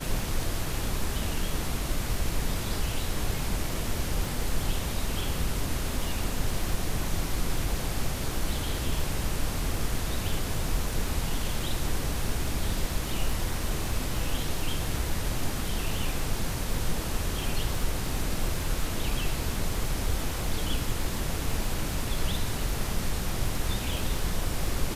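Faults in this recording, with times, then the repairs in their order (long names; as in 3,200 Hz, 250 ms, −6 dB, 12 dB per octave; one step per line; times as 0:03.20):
surface crackle 32 per second −33 dBFS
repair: click removal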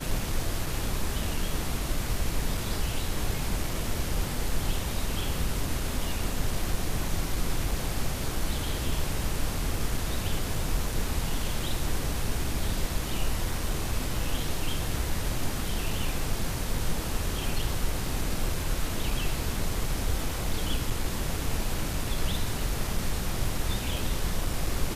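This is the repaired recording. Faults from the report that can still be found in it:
none of them is left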